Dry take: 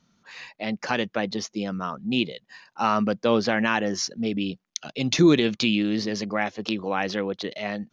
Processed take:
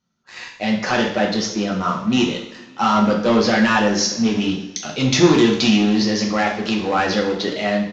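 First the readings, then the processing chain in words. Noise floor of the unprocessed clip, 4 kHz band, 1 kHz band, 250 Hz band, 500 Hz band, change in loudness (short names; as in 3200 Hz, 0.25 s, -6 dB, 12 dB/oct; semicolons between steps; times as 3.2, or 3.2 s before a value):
-71 dBFS, +7.0 dB, +7.5 dB, +7.5 dB, +6.5 dB, +7.0 dB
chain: sample leveller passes 3; two-slope reverb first 0.64 s, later 2.4 s, from -20 dB, DRR -1.5 dB; downsampling 16000 Hz; gain -5.5 dB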